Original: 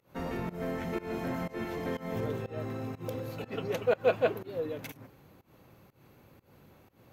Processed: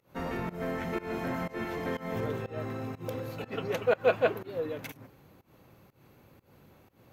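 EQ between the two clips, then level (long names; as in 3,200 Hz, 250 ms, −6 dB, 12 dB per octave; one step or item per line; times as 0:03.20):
dynamic equaliser 1,500 Hz, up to +4 dB, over −46 dBFS, Q 0.71
0.0 dB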